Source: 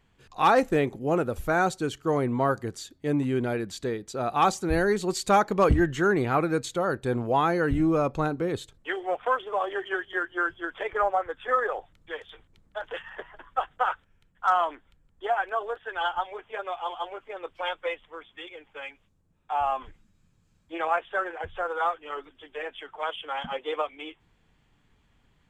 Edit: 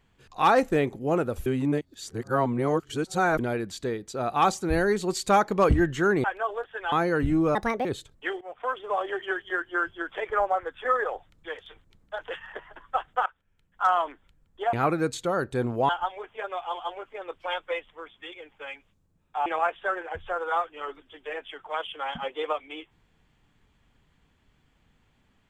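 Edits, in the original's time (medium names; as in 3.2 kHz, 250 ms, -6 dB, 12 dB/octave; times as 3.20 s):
1.46–3.39 s: reverse
6.24–7.40 s: swap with 15.36–16.04 s
8.03–8.48 s: speed 150%
9.04–9.54 s: fade in, from -19.5 dB
13.89–14.49 s: fade in, from -20.5 dB
19.61–20.75 s: delete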